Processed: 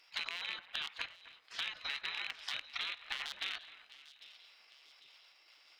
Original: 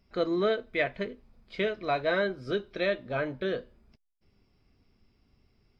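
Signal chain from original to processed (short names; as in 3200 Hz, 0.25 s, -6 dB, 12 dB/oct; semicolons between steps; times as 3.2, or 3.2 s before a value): rattling part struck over -39 dBFS, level -24 dBFS; level quantiser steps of 18 dB; notches 60/120/180/240/300/360/420 Hz; spectral gate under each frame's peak -20 dB weak; low shelf 480 Hz -9.5 dB; compressor 12:1, threshold -57 dBFS, peak gain reduction 14 dB; bell 3200 Hz +10 dB 3 oct; split-band echo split 2700 Hz, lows 0.262 s, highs 0.799 s, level -15.5 dB; gain +12 dB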